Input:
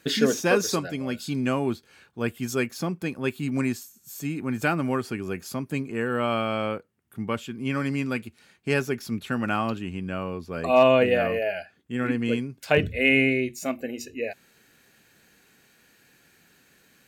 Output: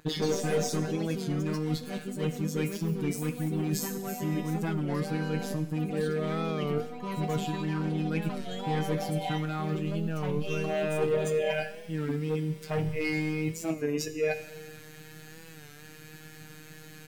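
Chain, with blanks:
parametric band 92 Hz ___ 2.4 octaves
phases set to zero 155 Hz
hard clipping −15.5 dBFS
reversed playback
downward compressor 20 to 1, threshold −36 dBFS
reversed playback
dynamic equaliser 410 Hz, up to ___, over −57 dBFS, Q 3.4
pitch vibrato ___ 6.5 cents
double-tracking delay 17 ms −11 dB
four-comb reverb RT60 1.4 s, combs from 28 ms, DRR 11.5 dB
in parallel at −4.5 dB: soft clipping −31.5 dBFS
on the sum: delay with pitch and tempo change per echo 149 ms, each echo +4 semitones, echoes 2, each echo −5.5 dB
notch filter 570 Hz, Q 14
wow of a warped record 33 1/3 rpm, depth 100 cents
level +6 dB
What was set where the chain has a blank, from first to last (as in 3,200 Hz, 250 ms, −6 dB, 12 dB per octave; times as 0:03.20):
+15 dB, +3 dB, 1.8 Hz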